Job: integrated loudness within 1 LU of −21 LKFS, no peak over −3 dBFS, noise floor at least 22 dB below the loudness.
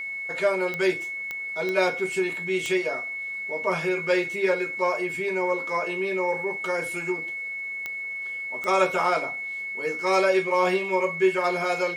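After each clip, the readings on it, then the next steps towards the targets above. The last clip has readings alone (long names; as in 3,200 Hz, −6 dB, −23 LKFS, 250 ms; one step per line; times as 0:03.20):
number of clicks 6; interfering tone 2,200 Hz; level of the tone −30 dBFS; integrated loudness −25.5 LKFS; sample peak −8.5 dBFS; target loudness −21.0 LKFS
→ click removal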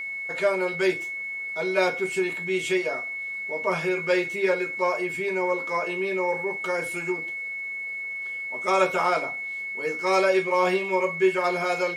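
number of clicks 0; interfering tone 2,200 Hz; level of the tone −30 dBFS
→ notch filter 2,200 Hz, Q 30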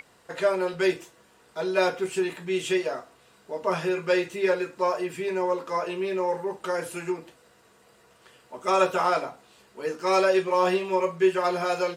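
interfering tone none found; integrated loudness −26.0 LKFS; sample peak −8.5 dBFS; target loudness −21.0 LKFS
→ level +5 dB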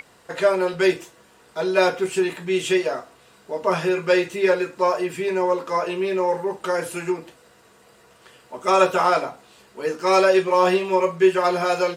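integrated loudness −21.0 LKFS; sample peak −3.5 dBFS; background noise floor −54 dBFS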